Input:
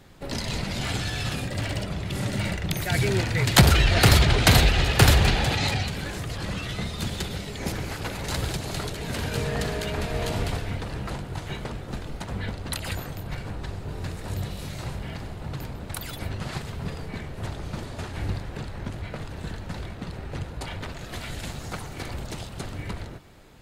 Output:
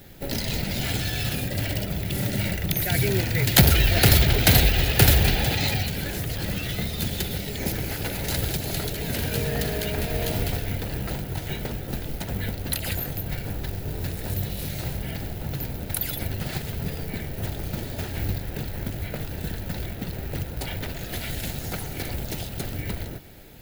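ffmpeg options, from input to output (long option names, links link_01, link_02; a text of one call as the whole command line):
ffmpeg -i in.wav -filter_complex "[0:a]equalizer=frequency=1100:width=3.1:gain=-12.5,asplit=2[link_01][link_02];[link_02]acompressor=threshold=-33dB:ratio=6,volume=0dB[link_03];[link_01][link_03]amix=inputs=2:normalize=0,acrusher=bits=5:mode=log:mix=0:aa=0.000001,aexciter=amount=2.1:drive=9.5:freq=11000,volume=-1.5dB" out.wav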